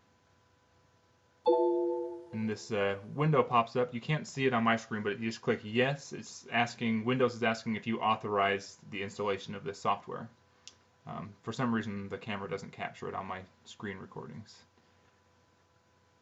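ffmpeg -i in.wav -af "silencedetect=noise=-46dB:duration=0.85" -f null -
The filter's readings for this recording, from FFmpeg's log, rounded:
silence_start: 0.00
silence_end: 1.46 | silence_duration: 1.46
silence_start: 14.55
silence_end: 16.21 | silence_duration: 1.66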